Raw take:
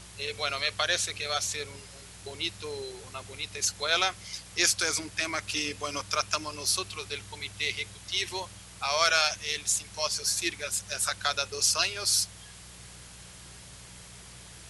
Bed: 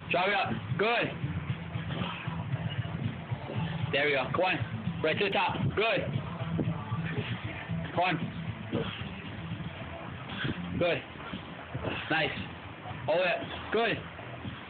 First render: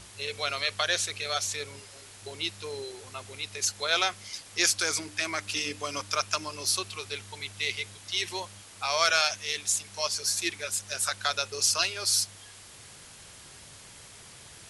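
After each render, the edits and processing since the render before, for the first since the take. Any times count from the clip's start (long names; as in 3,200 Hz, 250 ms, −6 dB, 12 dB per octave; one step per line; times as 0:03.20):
hum removal 60 Hz, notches 5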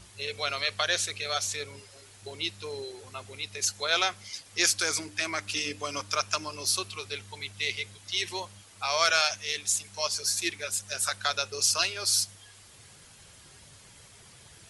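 broadband denoise 6 dB, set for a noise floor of −50 dBFS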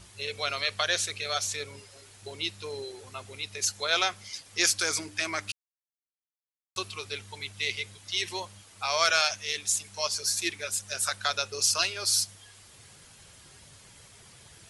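0:05.52–0:06.76: silence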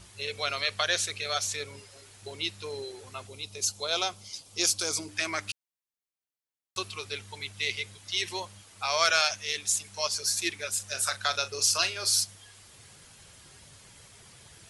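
0:03.27–0:05.09: parametric band 1,800 Hz −13.5 dB 0.8 octaves
0:10.72–0:12.21: double-tracking delay 38 ms −12.5 dB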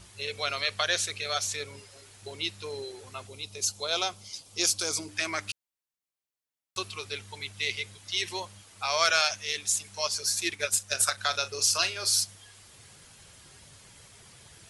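0:10.50–0:11.18: transient designer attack +8 dB, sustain −4 dB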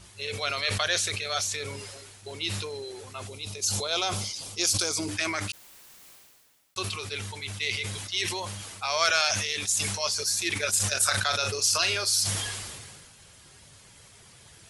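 level that may fall only so fast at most 31 dB per second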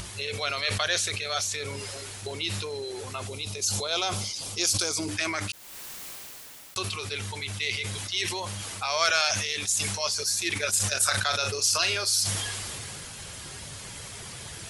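upward compression, threshold −28 dBFS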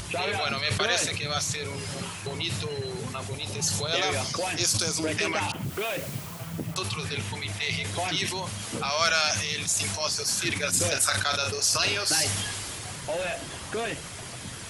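mix in bed −3 dB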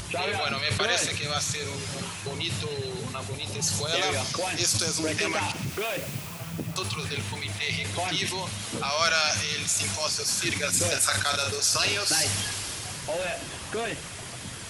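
delay with a high-pass on its return 128 ms, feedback 81%, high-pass 2,000 Hz, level −14 dB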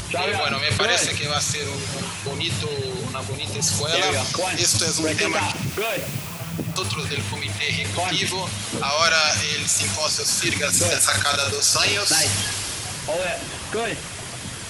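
level +5.5 dB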